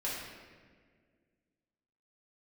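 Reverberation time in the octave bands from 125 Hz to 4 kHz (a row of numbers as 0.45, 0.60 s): 2.3, 2.4, 2.1, 1.5, 1.6, 1.1 s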